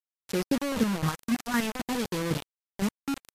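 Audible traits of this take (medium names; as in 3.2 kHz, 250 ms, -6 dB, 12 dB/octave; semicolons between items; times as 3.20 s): chopped level 3.9 Hz, depth 65%, duty 25%; phasing stages 4, 0.6 Hz, lowest notch 510–1700 Hz; a quantiser's noise floor 6-bit, dither none; MP3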